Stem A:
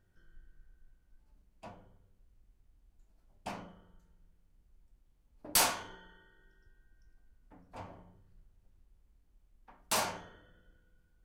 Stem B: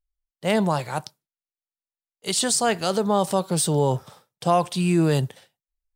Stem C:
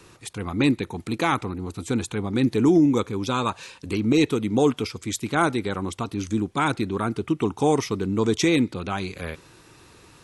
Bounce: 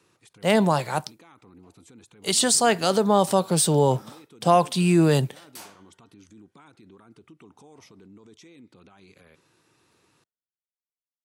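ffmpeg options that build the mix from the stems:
ffmpeg -i stem1.wav -i stem2.wav -i stem3.wav -filter_complex "[0:a]volume=-16dB[link_01];[1:a]volume=2dB[link_02];[2:a]acompressor=threshold=-26dB:ratio=6,alimiter=level_in=4dB:limit=-24dB:level=0:latency=1:release=37,volume=-4dB,volume=-13.5dB,asplit=2[link_03][link_04];[link_04]apad=whole_len=496124[link_05];[link_01][link_05]sidechaingate=range=-33dB:threshold=-58dB:ratio=16:detection=peak[link_06];[link_06][link_02][link_03]amix=inputs=3:normalize=0,highpass=120" out.wav

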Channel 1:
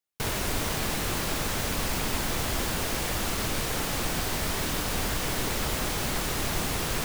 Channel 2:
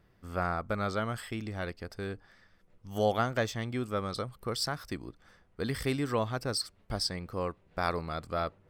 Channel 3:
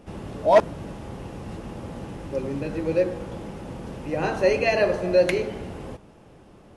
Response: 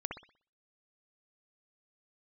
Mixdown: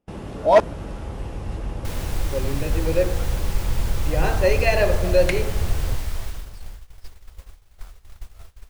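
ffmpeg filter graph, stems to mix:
-filter_complex "[0:a]equalizer=frequency=140:width=3.5:gain=-11.5,adelay=1650,volume=-6.5dB,afade=type=out:start_time=5.84:duration=0.67:silence=0.446684[link_01];[1:a]volume=-17.5dB[link_02];[2:a]volume=2dB[link_03];[link_01][link_02][link_03]amix=inputs=3:normalize=0,agate=range=-29dB:threshold=-39dB:ratio=16:detection=peak,asubboost=boost=12:cutoff=71"

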